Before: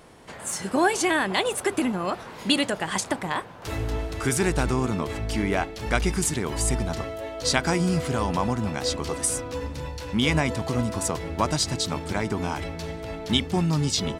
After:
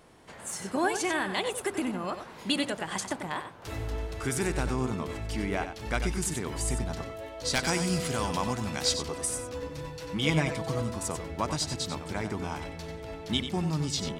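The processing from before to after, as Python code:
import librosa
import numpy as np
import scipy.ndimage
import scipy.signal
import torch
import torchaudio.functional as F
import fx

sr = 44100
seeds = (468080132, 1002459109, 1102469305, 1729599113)

y = fx.high_shelf(x, sr, hz=2200.0, db=10.0, at=(7.53, 8.94))
y = fx.comb(y, sr, ms=6.3, depth=0.72, at=(9.62, 10.82))
y = 10.0 ** (-7.0 / 20.0) * (np.abs((y / 10.0 ** (-7.0 / 20.0) + 3.0) % 4.0 - 2.0) - 1.0)
y = y + 10.0 ** (-9.0 / 20.0) * np.pad(y, (int(93 * sr / 1000.0), 0))[:len(y)]
y = y * librosa.db_to_amplitude(-6.5)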